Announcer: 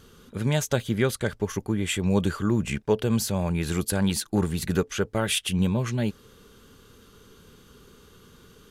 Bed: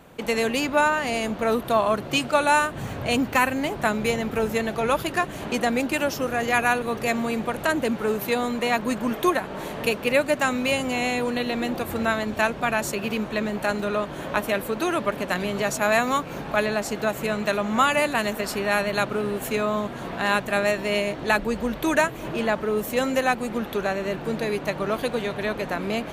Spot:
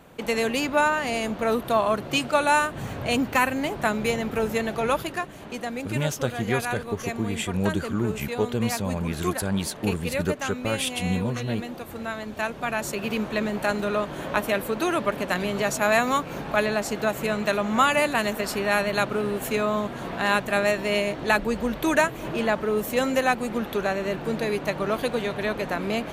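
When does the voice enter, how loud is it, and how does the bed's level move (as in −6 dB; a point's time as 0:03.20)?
5.50 s, −2.5 dB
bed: 0:04.91 −1 dB
0:05.36 −8.5 dB
0:12.09 −8.5 dB
0:13.20 0 dB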